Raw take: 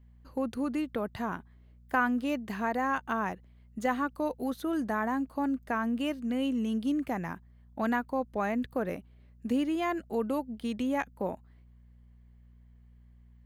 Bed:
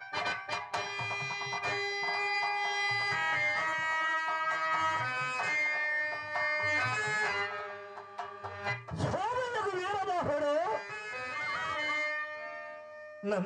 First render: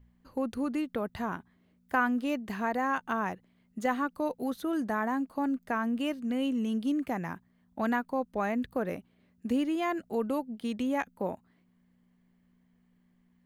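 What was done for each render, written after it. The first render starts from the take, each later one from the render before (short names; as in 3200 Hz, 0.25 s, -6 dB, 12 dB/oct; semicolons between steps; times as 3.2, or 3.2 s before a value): de-hum 60 Hz, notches 2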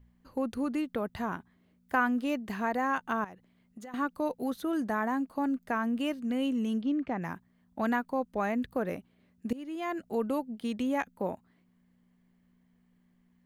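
3.24–3.94 compressor 8:1, threshold -42 dBFS; 6.81–7.22 air absorption 190 m; 9.53–10.08 fade in, from -20 dB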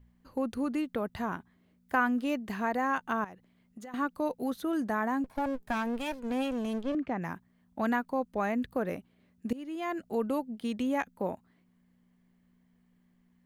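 5.24–6.95 minimum comb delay 1.2 ms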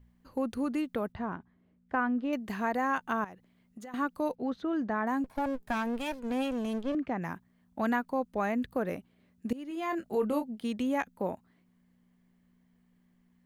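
1.12–2.33 tape spacing loss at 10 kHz 28 dB; 4.35–5.07 air absorption 180 m; 9.68–10.48 doubler 24 ms -6.5 dB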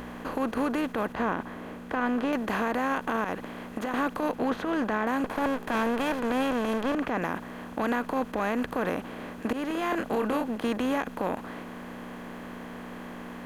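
per-bin compression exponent 0.4; limiter -18 dBFS, peak gain reduction 6.5 dB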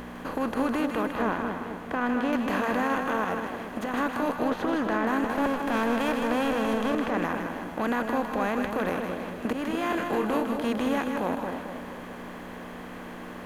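split-band echo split 840 Hz, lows 0.223 s, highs 0.157 s, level -5 dB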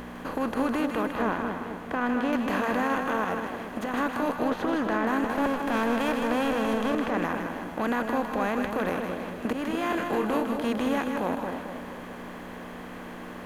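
nothing audible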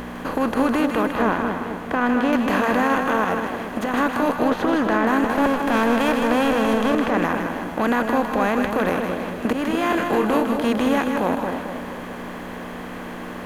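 gain +7 dB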